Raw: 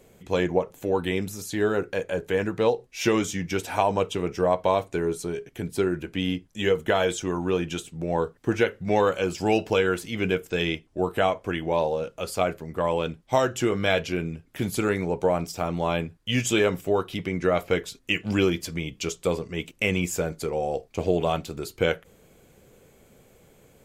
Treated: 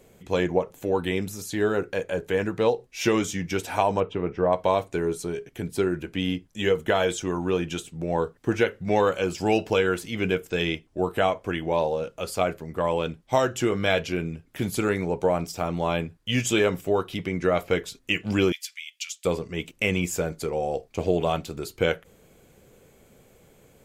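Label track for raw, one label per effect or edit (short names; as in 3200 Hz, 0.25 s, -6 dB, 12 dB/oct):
4.000000	4.530000	LPF 2000 Hz
18.520000	19.250000	inverse Chebyshev high-pass stop band from 610 Hz, stop band 60 dB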